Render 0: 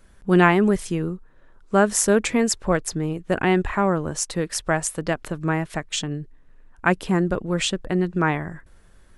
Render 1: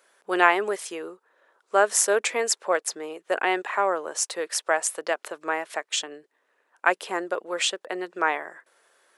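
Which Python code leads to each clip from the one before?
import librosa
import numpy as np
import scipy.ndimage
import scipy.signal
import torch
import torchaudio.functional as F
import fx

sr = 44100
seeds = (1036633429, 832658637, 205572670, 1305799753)

y = scipy.signal.sosfilt(scipy.signal.butter(4, 450.0, 'highpass', fs=sr, output='sos'), x)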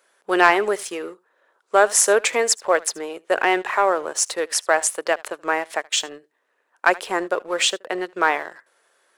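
y = x + 10.0 ** (-21.5 / 20.0) * np.pad(x, (int(76 * sr / 1000.0), 0))[:len(x)]
y = fx.leveller(y, sr, passes=1)
y = y * librosa.db_to_amplitude(1.5)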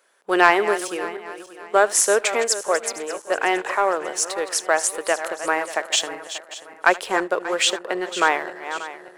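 y = fx.reverse_delay_fb(x, sr, ms=293, feedback_pct=59, wet_db=-12)
y = fx.rider(y, sr, range_db=5, speed_s=2.0)
y = y * librosa.db_to_amplitude(-2.5)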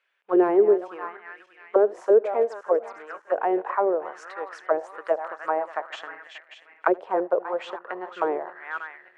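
y = fx.riaa(x, sr, side='playback')
y = fx.auto_wah(y, sr, base_hz=410.0, top_hz=2600.0, q=2.9, full_db=-13.5, direction='down')
y = y * librosa.db_to_amplitude(1.5)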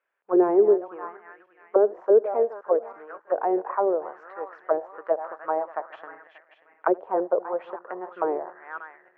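y = scipy.signal.sosfilt(scipy.signal.butter(2, 1200.0, 'lowpass', fs=sr, output='sos'), x)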